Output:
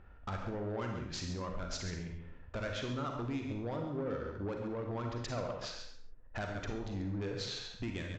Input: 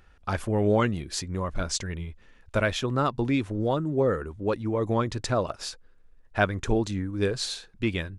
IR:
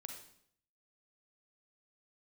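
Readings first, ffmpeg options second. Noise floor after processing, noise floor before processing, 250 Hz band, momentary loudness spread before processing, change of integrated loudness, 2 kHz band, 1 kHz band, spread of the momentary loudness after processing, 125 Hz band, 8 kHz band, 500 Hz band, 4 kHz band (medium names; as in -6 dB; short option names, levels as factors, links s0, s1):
-53 dBFS, -56 dBFS, -11.5 dB, 8 LU, -12.0 dB, -12.5 dB, -12.5 dB, 6 LU, -10.5 dB, -13.0 dB, -13.0 dB, -9.0 dB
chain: -filter_complex "[0:a]adynamicsmooth=sensitivity=6:basefreq=1600,asplit=2[s0][s1];[s1]aecho=0:1:137:0.237[s2];[s0][s2]amix=inputs=2:normalize=0,acompressor=threshold=0.0158:ratio=5,aresample=16000,asoftclip=type=tanh:threshold=0.02,aresample=44100[s3];[1:a]atrim=start_sample=2205,afade=t=out:st=0.33:d=0.01,atrim=end_sample=14994[s4];[s3][s4]afir=irnorm=-1:irlink=0,volume=2.24"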